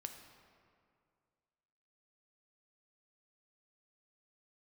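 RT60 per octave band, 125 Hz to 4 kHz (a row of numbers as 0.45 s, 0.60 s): 2.4 s, 2.3 s, 2.3 s, 2.2 s, 1.8 s, 1.3 s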